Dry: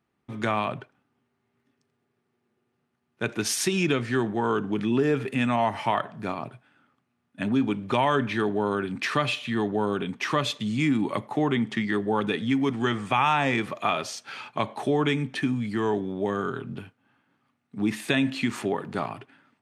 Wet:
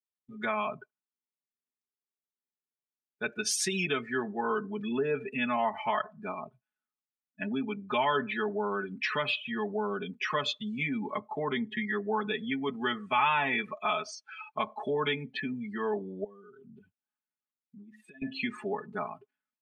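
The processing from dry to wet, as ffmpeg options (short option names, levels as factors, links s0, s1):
-filter_complex "[0:a]asettb=1/sr,asplit=3[s0][s1][s2];[s0]atrim=end=16.244[s3];[s1]atrim=start=16.24:end=18.22,asetpts=PTS-STARTPTS,afade=t=in:d=0.004:c=qsin,afade=t=out:st=1.976:d=0.004:c=qsin,acompressor=threshold=0.0141:ratio=20:attack=3.2:release=140:knee=1:detection=peak[s4];[s2]atrim=start=18.216[s5];[s3][s4]acrossfade=d=0.004:c1=hsin:c2=qsin[s6];[s6][s5]acrossfade=d=0.004:c1=qsin:c2=hsin,afftdn=nr=29:nf=-34,equalizer=f=190:w=0.35:g=-9,aecho=1:1:4.7:1,volume=0.631"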